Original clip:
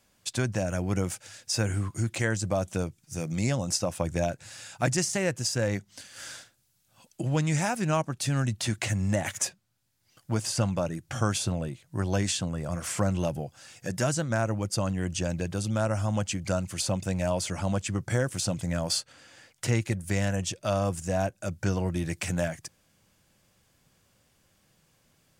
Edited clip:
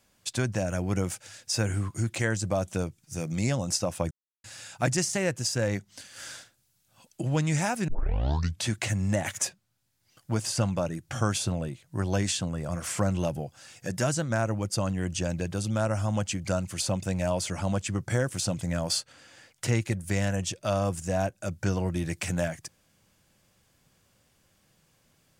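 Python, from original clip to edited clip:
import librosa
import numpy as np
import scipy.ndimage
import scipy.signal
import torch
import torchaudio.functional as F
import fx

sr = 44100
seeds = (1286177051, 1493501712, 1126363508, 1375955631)

y = fx.edit(x, sr, fx.silence(start_s=4.11, length_s=0.33),
    fx.tape_start(start_s=7.88, length_s=0.8), tone=tone)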